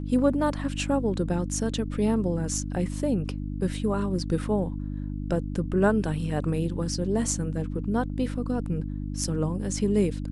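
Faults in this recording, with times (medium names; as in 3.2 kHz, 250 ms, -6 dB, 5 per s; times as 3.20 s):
hum 50 Hz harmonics 6 -32 dBFS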